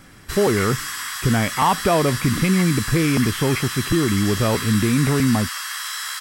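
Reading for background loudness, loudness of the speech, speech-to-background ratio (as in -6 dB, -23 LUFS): -26.5 LUFS, -20.5 LUFS, 6.0 dB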